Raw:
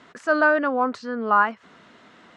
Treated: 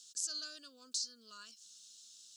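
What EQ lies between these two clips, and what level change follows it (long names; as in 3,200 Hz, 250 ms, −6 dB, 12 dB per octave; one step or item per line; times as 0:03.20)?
inverse Chebyshev high-pass filter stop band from 2,200 Hz, stop band 50 dB
+15.5 dB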